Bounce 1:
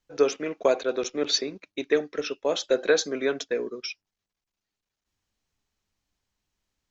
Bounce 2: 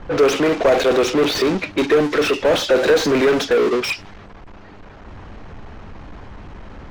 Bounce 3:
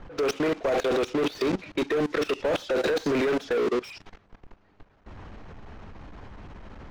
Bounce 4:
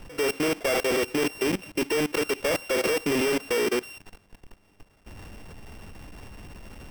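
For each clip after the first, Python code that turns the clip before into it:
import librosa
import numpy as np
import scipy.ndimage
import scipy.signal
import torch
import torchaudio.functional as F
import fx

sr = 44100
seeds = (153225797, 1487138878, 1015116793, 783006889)

y1 = fx.power_curve(x, sr, exponent=0.35)
y1 = fx.env_lowpass(y1, sr, base_hz=980.0, full_db=-13.0)
y1 = fx.slew_limit(y1, sr, full_power_hz=250.0)
y1 = y1 * librosa.db_to_amplitude(2.0)
y2 = fx.level_steps(y1, sr, step_db=19)
y2 = y2 * librosa.db_to_amplitude(-4.5)
y3 = np.r_[np.sort(y2[:len(y2) // 16 * 16].reshape(-1, 16), axis=1).ravel(), y2[len(y2) // 16 * 16:]]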